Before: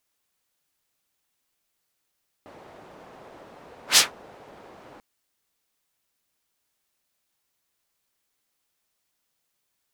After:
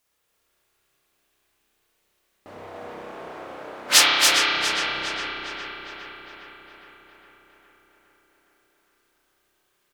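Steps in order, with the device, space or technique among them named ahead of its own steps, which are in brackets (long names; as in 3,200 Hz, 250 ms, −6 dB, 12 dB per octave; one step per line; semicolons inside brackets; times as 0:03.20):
0:02.66–0:04.25: high-pass filter 240 Hz 6 dB per octave
single-tap delay 282 ms −4 dB
dub delay into a spring reverb (feedback echo with a low-pass in the loop 409 ms, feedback 64%, low-pass 4,300 Hz, level −5 dB; spring reverb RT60 2 s, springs 31 ms, chirp 35 ms, DRR −4 dB)
level +2.5 dB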